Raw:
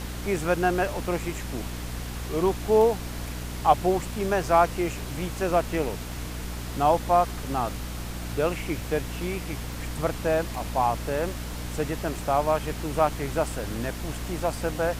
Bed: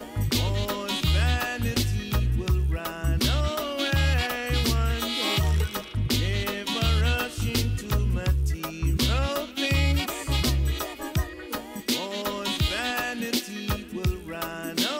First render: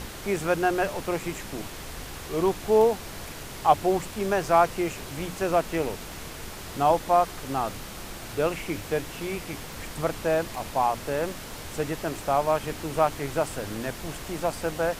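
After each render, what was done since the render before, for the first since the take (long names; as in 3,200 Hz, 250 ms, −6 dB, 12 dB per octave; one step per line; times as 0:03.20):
mains-hum notches 60/120/180/240/300 Hz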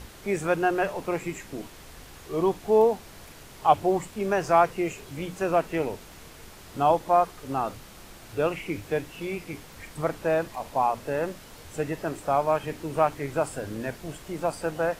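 noise reduction from a noise print 8 dB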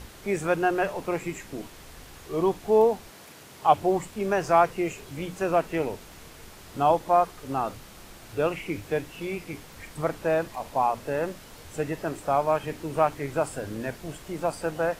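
0:03.09–0:03.79: high-pass filter 190 Hz → 77 Hz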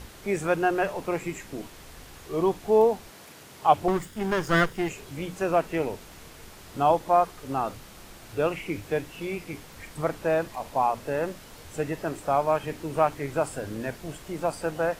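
0:03.88–0:04.89: lower of the sound and its delayed copy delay 0.59 ms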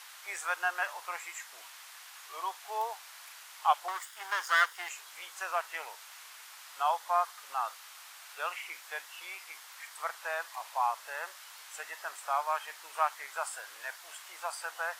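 high-pass filter 960 Hz 24 dB per octave
dynamic equaliser 2,500 Hz, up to −5 dB, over −53 dBFS, Q 3.7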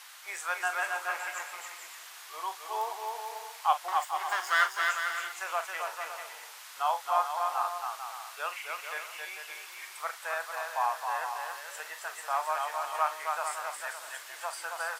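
double-tracking delay 39 ms −11.5 dB
bouncing-ball delay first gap 270 ms, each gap 0.65×, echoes 5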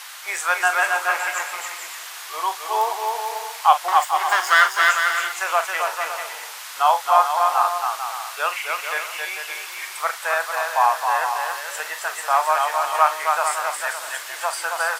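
level +12 dB
brickwall limiter −2 dBFS, peak gain reduction 2.5 dB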